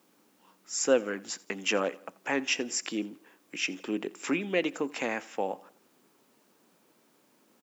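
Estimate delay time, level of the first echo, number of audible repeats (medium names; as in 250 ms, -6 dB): 85 ms, -22.5 dB, 2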